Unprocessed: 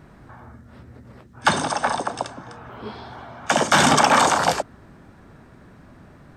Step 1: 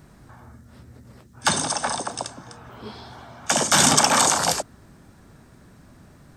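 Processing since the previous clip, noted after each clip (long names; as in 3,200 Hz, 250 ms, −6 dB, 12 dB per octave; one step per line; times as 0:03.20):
bass and treble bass +3 dB, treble +13 dB
level −4.5 dB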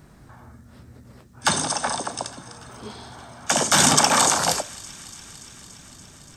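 delay with a high-pass on its return 287 ms, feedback 79%, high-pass 1,800 Hz, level −21 dB
on a send at −16 dB: convolution reverb RT60 0.60 s, pre-delay 6 ms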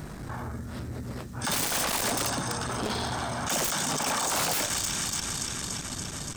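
compressor whose output falls as the input rises −28 dBFS, ratio −1
wave folding −27 dBFS
saturating transformer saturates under 280 Hz
level +6 dB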